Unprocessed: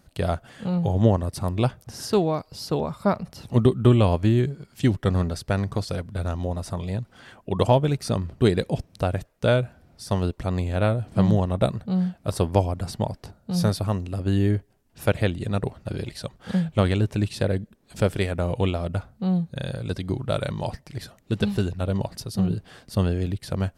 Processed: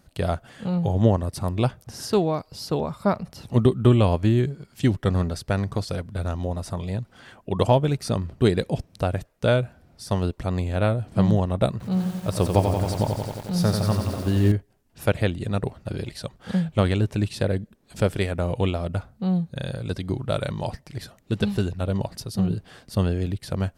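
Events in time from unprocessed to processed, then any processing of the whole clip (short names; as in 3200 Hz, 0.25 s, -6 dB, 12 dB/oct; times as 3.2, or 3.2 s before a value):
11.71–14.52 lo-fi delay 90 ms, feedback 80%, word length 7-bit, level -5.5 dB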